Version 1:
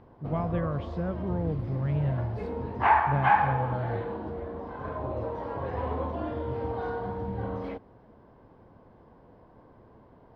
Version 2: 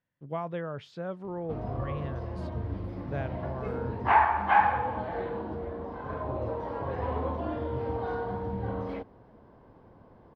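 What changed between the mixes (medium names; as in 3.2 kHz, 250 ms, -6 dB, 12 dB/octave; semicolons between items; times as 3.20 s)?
speech: add tone controls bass -11 dB, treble +9 dB; background: entry +1.25 s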